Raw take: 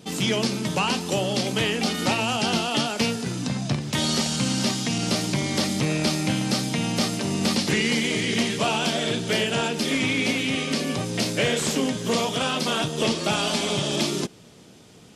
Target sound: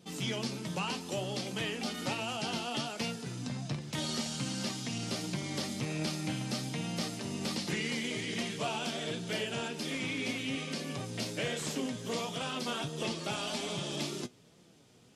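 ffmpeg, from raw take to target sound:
ffmpeg -i in.wav -af "flanger=delay=5.7:depth=2.6:regen=57:speed=1.3:shape=sinusoidal,volume=-7.5dB" out.wav

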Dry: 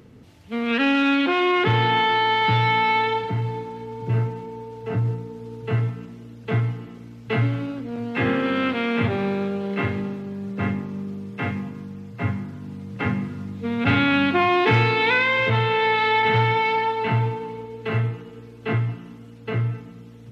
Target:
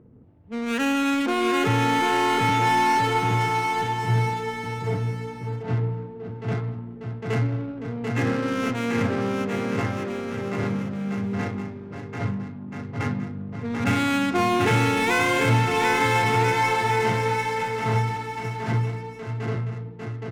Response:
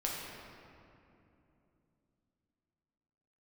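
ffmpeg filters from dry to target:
-filter_complex "[0:a]highshelf=frequency=4000:gain=-5,adynamicsmooth=sensitivity=3.5:basefreq=720,asplit=2[link_01][link_02];[link_02]aecho=0:1:740|1332|1806|2184|2488:0.631|0.398|0.251|0.158|0.1[link_03];[link_01][link_03]amix=inputs=2:normalize=0,volume=-3dB"

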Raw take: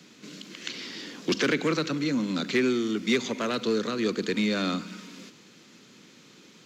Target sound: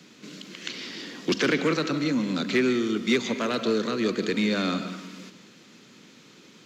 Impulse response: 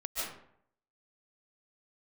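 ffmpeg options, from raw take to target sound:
-filter_complex "[0:a]asplit=2[link_01][link_02];[1:a]atrim=start_sample=2205,lowpass=5200[link_03];[link_02][link_03]afir=irnorm=-1:irlink=0,volume=-11.5dB[link_04];[link_01][link_04]amix=inputs=2:normalize=0"

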